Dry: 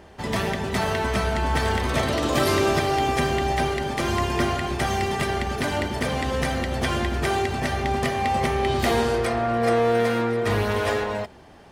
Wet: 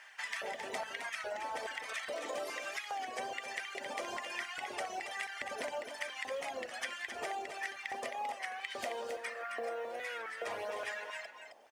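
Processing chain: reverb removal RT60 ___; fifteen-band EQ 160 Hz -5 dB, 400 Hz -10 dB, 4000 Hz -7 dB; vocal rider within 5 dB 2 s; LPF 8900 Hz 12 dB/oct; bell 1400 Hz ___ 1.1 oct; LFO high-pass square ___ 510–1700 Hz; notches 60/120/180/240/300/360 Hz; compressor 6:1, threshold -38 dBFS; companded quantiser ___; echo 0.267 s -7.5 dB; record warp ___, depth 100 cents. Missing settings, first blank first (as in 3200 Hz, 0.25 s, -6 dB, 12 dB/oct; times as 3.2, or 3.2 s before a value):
1.8 s, -6 dB, 1.2 Hz, 8-bit, 33 1/3 rpm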